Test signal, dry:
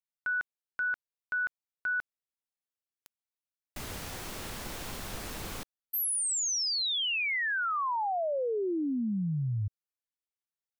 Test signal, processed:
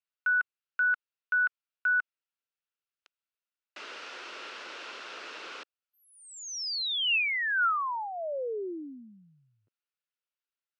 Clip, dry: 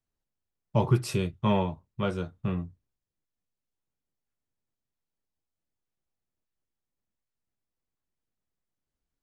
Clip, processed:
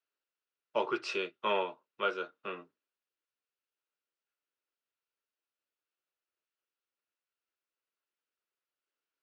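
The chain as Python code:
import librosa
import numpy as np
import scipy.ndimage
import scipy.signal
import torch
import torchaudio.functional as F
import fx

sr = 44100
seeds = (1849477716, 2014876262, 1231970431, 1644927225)

y = fx.cabinet(x, sr, low_hz=370.0, low_slope=24, high_hz=5300.0, hz=(760.0, 1400.0, 2700.0), db=(-6, 8, 7))
y = y * librosa.db_to_amplitude(-1.5)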